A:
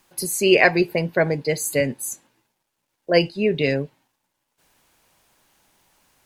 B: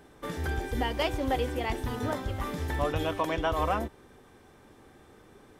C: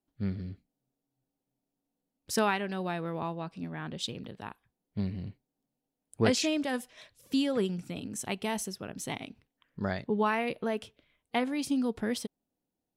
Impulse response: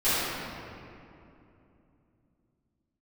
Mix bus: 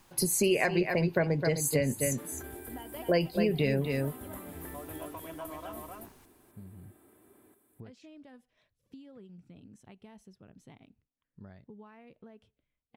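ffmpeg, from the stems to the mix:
-filter_complex "[0:a]equalizer=f=980:t=o:w=0.77:g=3,volume=-1.5dB,asplit=2[a][b];[b]volume=-9.5dB[c];[1:a]highpass=180,aecho=1:1:3:0.5,aexciter=amount=14.8:drive=5.4:freq=8.5k,adelay=1950,volume=-10dB,asplit=2[d][e];[e]volume=-10dB[f];[2:a]acompressor=threshold=-33dB:ratio=6,adelay=1600,volume=-18dB[g];[d][g]amix=inputs=2:normalize=0,highshelf=f=4.8k:g=-12,acompressor=threshold=-44dB:ratio=3,volume=0dB[h];[c][f]amix=inputs=2:normalize=0,aecho=0:1:259:1[i];[a][h][i]amix=inputs=3:normalize=0,lowshelf=f=210:g=11,acompressor=threshold=-24dB:ratio=6"

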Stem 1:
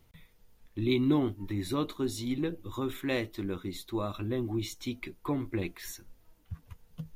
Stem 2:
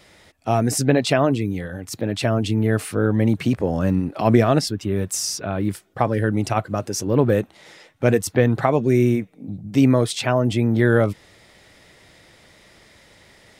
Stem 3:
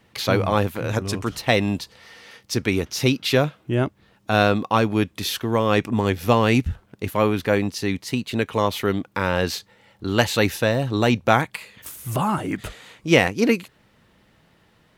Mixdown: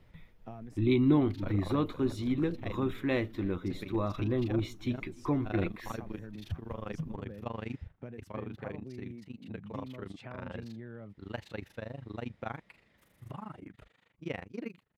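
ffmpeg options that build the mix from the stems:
-filter_complex "[0:a]volume=0.5dB,asplit=3[a][b][c];[b]volume=-23.5dB[d];[1:a]equalizer=f=200:t=o:w=0.65:g=6,acompressor=threshold=-24dB:ratio=10,volume=-18.5dB[e];[2:a]tremolo=f=25:d=0.947,adelay=1150,volume=-18.5dB[f];[c]apad=whole_len=599634[g];[e][g]sidechaincompress=threshold=-50dB:ratio=8:attack=16:release=135[h];[d]aecho=0:1:299|598|897|1196|1495|1794:1|0.44|0.194|0.0852|0.0375|0.0165[i];[a][h][f][i]amix=inputs=4:normalize=0,bass=f=250:g=3,treble=f=4k:g=-14"

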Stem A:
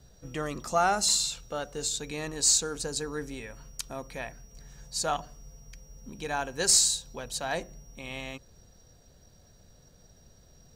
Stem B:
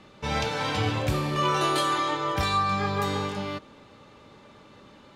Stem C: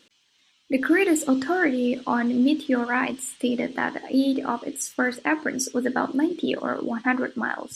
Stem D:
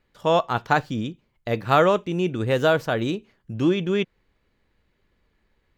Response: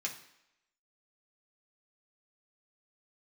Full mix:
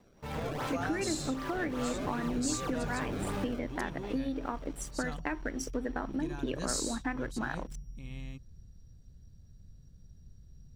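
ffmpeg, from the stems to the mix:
-filter_complex "[0:a]asubboost=boost=11:cutoff=190,volume=-14dB[a];[1:a]dynaudnorm=f=260:g=5:m=13dB,acrusher=samples=27:mix=1:aa=0.000001:lfo=1:lforange=43.2:lforate=2.6,asoftclip=type=hard:threshold=-21dB,volume=-11dB[b];[2:a]aeval=exprs='sgn(val(0))*max(abs(val(0))-0.00841,0)':c=same,volume=-3dB[c];[3:a]asoftclip=type=tanh:threshold=-22dB,adelay=100,volume=-16dB[d];[b][c]amix=inputs=2:normalize=0,highshelf=f=4.1k:g=-10,acompressor=threshold=-31dB:ratio=6,volume=0dB[e];[a][d][e]amix=inputs=3:normalize=0"

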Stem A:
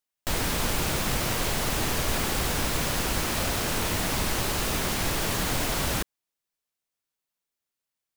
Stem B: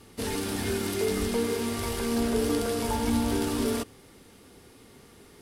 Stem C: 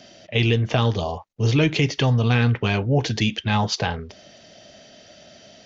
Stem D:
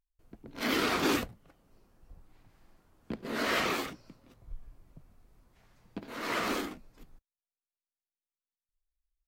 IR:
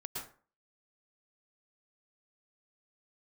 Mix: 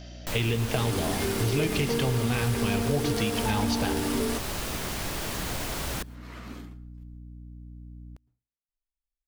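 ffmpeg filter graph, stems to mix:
-filter_complex "[0:a]aeval=exprs='val(0)+0.0141*(sin(2*PI*60*n/s)+sin(2*PI*2*60*n/s)/2+sin(2*PI*3*60*n/s)/3+sin(2*PI*4*60*n/s)/4+sin(2*PI*5*60*n/s)/5)':c=same,volume=-5.5dB,asplit=2[a][b];[b]volume=-23.5dB[c];[1:a]adelay=550,volume=3dB[d];[2:a]volume=-4dB,asplit=2[e][f];[f]volume=-9dB[g];[3:a]lowshelf=f=310:t=q:w=1.5:g=7,volume=-15dB,asplit=2[h][i];[i]volume=-14.5dB[j];[4:a]atrim=start_sample=2205[k];[c][g][j]amix=inputs=3:normalize=0[l];[l][k]afir=irnorm=-1:irlink=0[m];[a][d][e][h][m]amix=inputs=5:normalize=0,acompressor=threshold=-25dB:ratio=2.5"

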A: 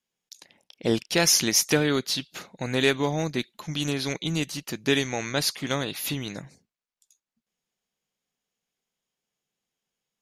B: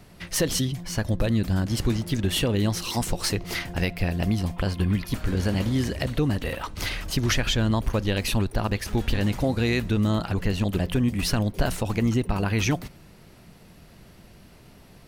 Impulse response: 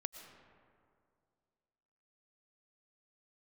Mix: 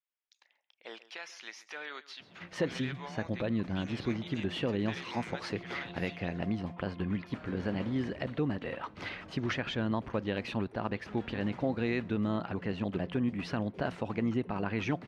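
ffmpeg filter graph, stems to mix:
-filter_complex "[0:a]highpass=1k,alimiter=limit=-17.5dB:level=0:latency=1:release=78,volume=-8.5dB,asplit=2[a][b];[b]volume=-18dB[c];[1:a]adelay=2200,volume=-6dB[d];[c]aecho=0:1:135:1[e];[a][d][e]amix=inputs=3:normalize=0,highpass=160,lowpass=2.4k"

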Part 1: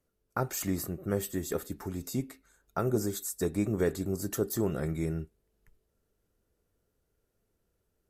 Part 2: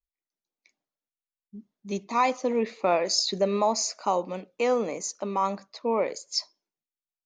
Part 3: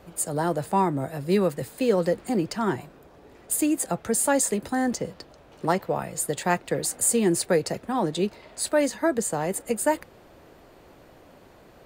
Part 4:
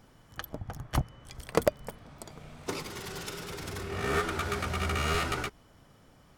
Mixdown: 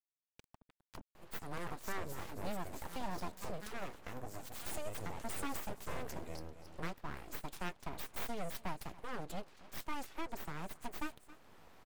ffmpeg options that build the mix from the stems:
-filter_complex "[0:a]adelay=1300,volume=-1dB,asplit=2[a][b];[b]volume=-16.5dB[c];[1:a]acrusher=bits=4:dc=4:mix=0:aa=0.000001,asplit=2[d][e];[e]adelay=9.5,afreqshift=2.3[f];[d][f]amix=inputs=2:normalize=1,volume=-14dB,asplit=3[g][h][i];[h]volume=-15.5dB[j];[2:a]adelay=1150,volume=-6.5dB,asplit=2[k][l];[l]volume=-22.5dB[m];[3:a]volume=-14dB[n];[i]apad=whole_len=281160[o];[n][o]sidechaincompress=threshold=-53dB:ratio=8:attack=16:release=319[p];[a][g][p]amix=inputs=3:normalize=0,aeval=exprs='sgn(val(0))*max(abs(val(0))-0.00531,0)':c=same,alimiter=level_in=1dB:limit=-24dB:level=0:latency=1:release=358,volume=-1dB,volume=0dB[q];[c][j][m]amix=inputs=3:normalize=0,aecho=0:1:270:1[r];[k][q][r]amix=inputs=3:normalize=0,aeval=exprs='abs(val(0))':c=same,acompressor=threshold=-52dB:ratio=1.5"

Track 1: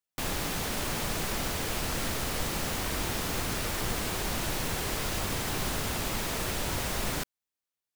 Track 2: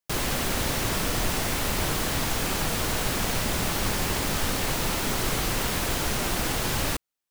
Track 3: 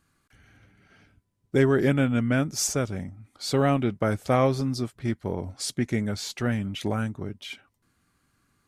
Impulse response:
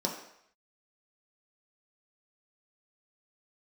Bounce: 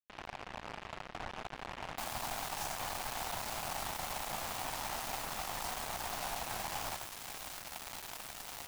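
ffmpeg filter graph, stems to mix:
-filter_complex "[0:a]adelay=1800,volume=0.5dB[a];[1:a]lowpass=f=1.2k:w=0.5412,lowpass=f=1.2k:w=1.3066,volume=-0.5dB[b];[2:a]alimiter=limit=-19dB:level=0:latency=1,volume=-9.5dB[c];[a][b][c]amix=inputs=3:normalize=0,lowshelf=f=560:t=q:w=3:g=-9.5,acrusher=bits=3:mix=0:aa=0.5,asoftclip=type=tanh:threshold=-30.5dB"

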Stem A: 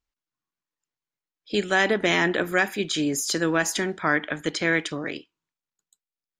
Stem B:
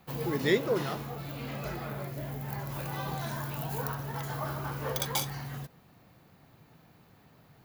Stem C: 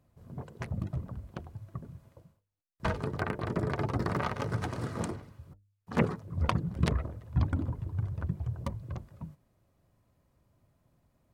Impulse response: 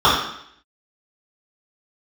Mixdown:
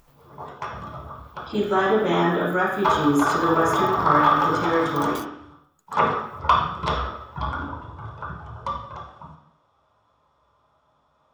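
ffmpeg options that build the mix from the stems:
-filter_complex "[0:a]equalizer=f=4k:w=0.61:g=-9.5,volume=-7.5dB,asplit=3[a][b][c];[b]volume=-14dB[d];[1:a]volume=-10dB[e];[2:a]acrossover=split=500 7700:gain=0.126 1 0.0794[f][g][h];[f][g][h]amix=inputs=3:normalize=0,volume=2dB,asplit=2[i][j];[j]volume=-15dB[k];[c]apad=whole_len=337303[l];[e][l]sidechaingate=range=-40dB:threshold=-49dB:ratio=16:detection=peak[m];[a][m]amix=inputs=2:normalize=0,acompressor=mode=upward:threshold=-33dB:ratio=2.5,alimiter=limit=-23dB:level=0:latency=1:release=112,volume=0dB[n];[3:a]atrim=start_sample=2205[o];[d][k]amix=inputs=2:normalize=0[p];[p][o]afir=irnorm=-1:irlink=0[q];[i][n][q]amix=inputs=3:normalize=0"

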